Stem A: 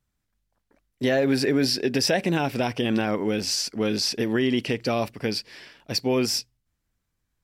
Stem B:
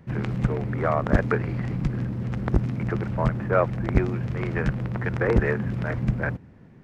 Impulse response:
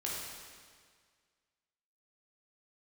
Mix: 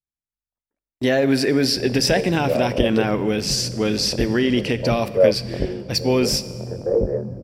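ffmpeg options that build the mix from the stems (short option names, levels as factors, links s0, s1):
-filter_complex "[0:a]volume=1.33,asplit=2[s0][s1];[s1]volume=0.178[s2];[1:a]flanger=delay=19.5:depth=4.6:speed=1.7,lowpass=f=540:t=q:w=4.9,adelay=1650,volume=0.75[s3];[2:a]atrim=start_sample=2205[s4];[s2][s4]afir=irnorm=-1:irlink=0[s5];[s0][s3][s5]amix=inputs=3:normalize=0,agate=range=0.0501:threshold=0.0141:ratio=16:detection=peak"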